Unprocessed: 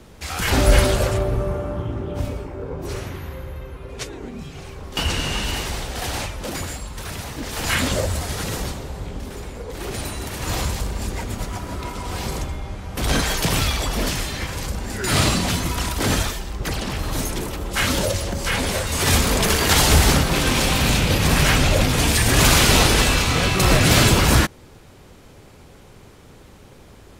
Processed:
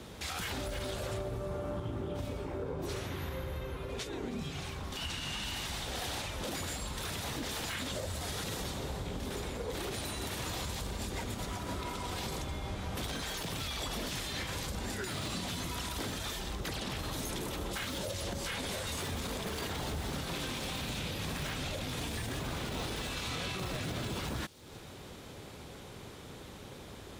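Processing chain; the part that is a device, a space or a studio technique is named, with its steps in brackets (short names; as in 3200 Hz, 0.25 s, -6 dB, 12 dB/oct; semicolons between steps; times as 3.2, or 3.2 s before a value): broadcast voice chain (HPF 81 Hz 6 dB/oct; de-esser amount 45%; compressor 5:1, threshold -33 dBFS, peak gain reduction 18 dB; bell 3600 Hz +5.5 dB 0.37 oct; limiter -27 dBFS, peak gain reduction 9.5 dB); 4.53–5.86 bell 450 Hz -7 dB 0.78 oct; thin delay 0.316 s, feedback 67%, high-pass 4200 Hz, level -16.5 dB; gain -1 dB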